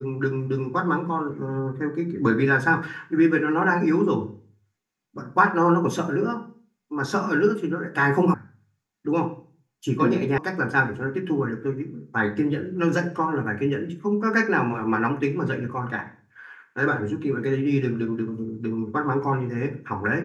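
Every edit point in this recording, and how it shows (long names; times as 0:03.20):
0:08.34: cut off before it has died away
0:10.38: cut off before it has died away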